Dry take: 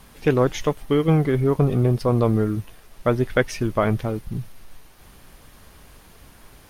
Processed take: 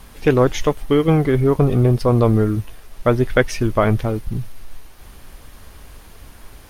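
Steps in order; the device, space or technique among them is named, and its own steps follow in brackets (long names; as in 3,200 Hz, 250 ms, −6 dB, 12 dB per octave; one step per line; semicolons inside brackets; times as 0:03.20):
low shelf boost with a cut just above (low-shelf EQ 82 Hz +6.5 dB; parametric band 160 Hz −4 dB 0.63 octaves)
level +4 dB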